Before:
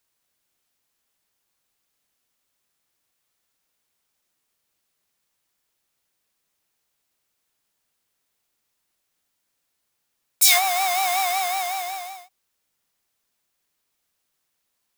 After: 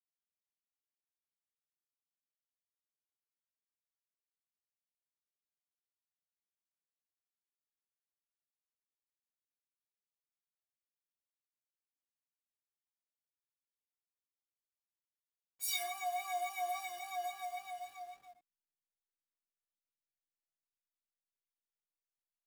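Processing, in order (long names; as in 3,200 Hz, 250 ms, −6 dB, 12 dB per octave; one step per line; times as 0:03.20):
time stretch by phase vocoder 1.5×
stiff-string resonator 340 Hz, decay 0.22 s, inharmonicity 0.03
slack as between gear wheels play −50 dBFS
level −6 dB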